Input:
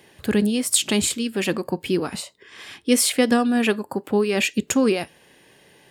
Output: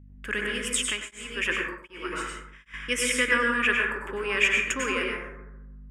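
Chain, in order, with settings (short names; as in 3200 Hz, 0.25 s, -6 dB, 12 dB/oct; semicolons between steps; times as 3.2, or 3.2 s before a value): HPF 860 Hz 12 dB/oct; gate -46 dBFS, range -38 dB; fixed phaser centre 1800 Hz, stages 4; hum 50 Hz, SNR 21 dB; air absorption 93 m; plate-style reverb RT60 1 s, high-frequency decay 0.35×, pre-delay 85 ms, DRR -1.5 dB; 0.73–2.74 beating tremolo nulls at 1.3 Hz; gain +4.5 dB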